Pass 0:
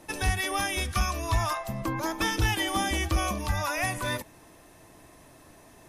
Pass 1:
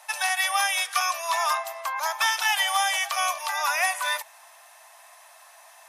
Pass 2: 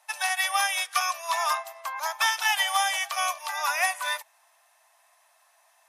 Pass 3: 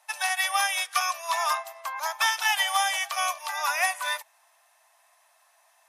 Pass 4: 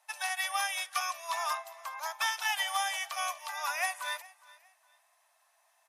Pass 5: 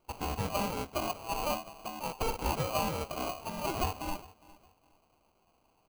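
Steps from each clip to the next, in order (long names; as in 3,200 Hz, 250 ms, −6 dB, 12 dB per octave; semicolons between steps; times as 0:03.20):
Butterworth high-pass 680 Hz 48 dB per octave; level +6 dB
expander for the loud parts 1.5 to 1, over −45 dBFS
no processing that can be heard
repeating echo 410 ms, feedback 29%, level −21.5 dB; level −7 dB
hum removal 372.6 Hz, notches 3; sample-rate reduction 1,800 Hz, jitter 0%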